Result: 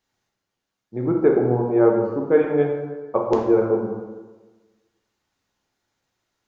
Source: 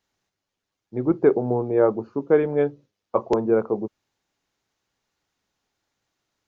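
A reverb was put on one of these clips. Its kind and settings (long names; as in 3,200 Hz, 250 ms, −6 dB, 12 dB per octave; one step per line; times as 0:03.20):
dense smooth reverb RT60 1.3 s, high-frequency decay 0.6×, DRR 0 dB
level −1 dB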